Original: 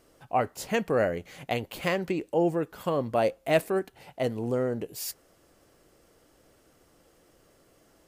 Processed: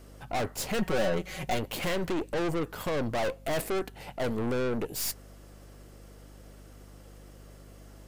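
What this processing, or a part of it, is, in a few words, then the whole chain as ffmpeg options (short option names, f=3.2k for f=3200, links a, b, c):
valve amplifier with mains hum: -filter_complex "[0:a]aeval=exprs='(tanh(63.1*val(0)+0.6)-tanh(0.6))/63.1':c=same,aeval=exprs='val(0)+0.00126*(sin(2*PI*50*n/s)+sin(2*PI*2*50*n/s)/2+sin(2*PI*3*50*n/s)/3+sin(2*PI*4*50*n/s)/4+sin(2*PI*5*50*n/s)/5)':c=same,asettb=1/sr,asplit=3[a][b][c];[a]atrim=end=0.784[d];[b]atrim=start=0.78:end=1.59,asetpts=PTS-STARTPTS,afade=t=in:d=0.004:c=qsin,afade=t=out:st=0.806:d=0.004:c=qsin,aecho=1:1:5.4:0.71,atrim=end_sample=35721[e];[c]atrim=start=1.586[f];[d][e]acrossfade=d=0.004:c1=hsin:c2=qsin[g];[g][f]acrossfade=d=0.004:c1=qsin:c2=hsin,volume=8.5dB"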